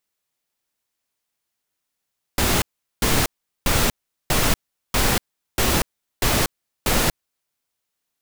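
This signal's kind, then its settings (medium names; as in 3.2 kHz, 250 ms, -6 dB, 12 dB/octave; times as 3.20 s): noise bursts pink, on 0.24 s, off 0.40 s, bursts 8, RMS -18.5 dBFS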